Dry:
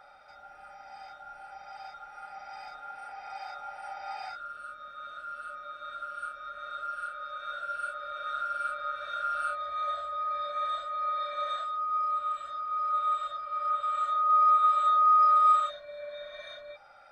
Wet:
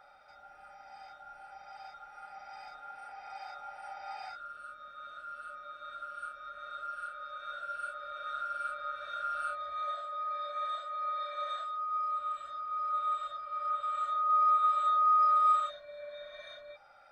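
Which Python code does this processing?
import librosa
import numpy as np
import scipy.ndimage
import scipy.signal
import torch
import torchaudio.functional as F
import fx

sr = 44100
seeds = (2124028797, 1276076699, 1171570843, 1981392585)

y = fx.highpass(x, sr, hz=fx.line((9.81, 180.0), (12.17, 440.0)), slope=12, at=(9.81, 12.17), fade=0.02)
y = F.gain(torch.from_numpy(y), -4.0).numpy()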